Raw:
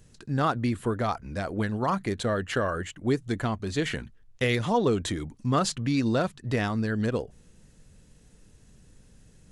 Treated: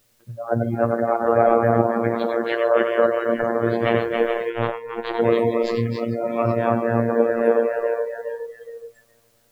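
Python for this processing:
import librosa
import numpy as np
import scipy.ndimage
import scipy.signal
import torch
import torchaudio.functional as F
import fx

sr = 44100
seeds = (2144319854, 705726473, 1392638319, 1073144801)

p1 = scipy.signal.sosfilt(scipy.signal.butter(2, 2000.0, 'lowpass', fs=sr, output='sos'), x)
p2 = fx.low_shelf(p1, sr, hz=150.0, db=-4.0)
p3 = p2 + fx.echo_thinned(p2, sr, ms=418, feedback_pct=61, hz=350.0, wet_db=-7.5, dry=0)
p4 = fx.over_compress(p3, sr, threshold_db=-31.0, ratio=-0.5)
p5 = fx.peak_eq(p4, sr, hz=570.0, db=14.5, octaves=0.9)
p6 = fx.echo_multitap(p5, sr, ms=(93, 276, 445), db=(-5.5, -3.5, -11.5))
p7 = fx.robotise(p6, sr, hz=116.0)
p8 = fx.quant_dither(p7, sr, seeds[0], bits=6, dither='triangular')
p9 = p7 + (p8 * librosa.db_to_amplitude(-7.5))
p10 = fx.power_curve(p9, sr, exponent=1.4, at=(4.5, 5.21))
p11 = fx.noise_reduce_blind(p10, sr, reduce_db=23)
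y = p11 * librosa.db_to_amplitude(3.0)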